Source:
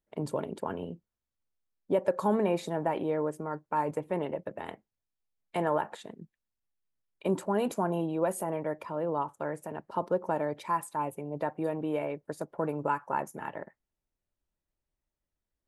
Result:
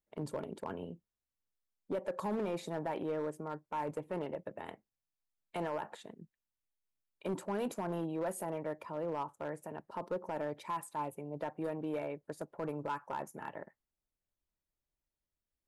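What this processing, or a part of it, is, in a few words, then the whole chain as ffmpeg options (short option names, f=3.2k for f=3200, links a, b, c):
limiter into clipper: -af "alimiter=limit=-20.5dB:level=0:latency=1:release=27,asoftclip=type=hard:threshold=-24.5dB,volume=-5.5dB"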